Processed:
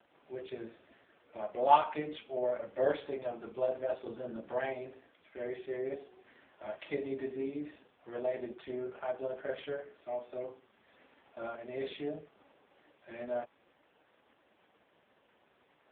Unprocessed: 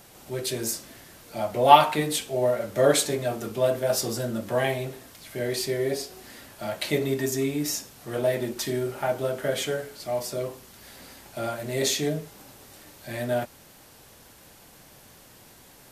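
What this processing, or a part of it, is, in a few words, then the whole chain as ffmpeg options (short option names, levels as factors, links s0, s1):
telephone: -af "highpass=270,lowpass=3200,volume=0.398" -ar 8000 -c:a libopencore_amrnb -b:a 4750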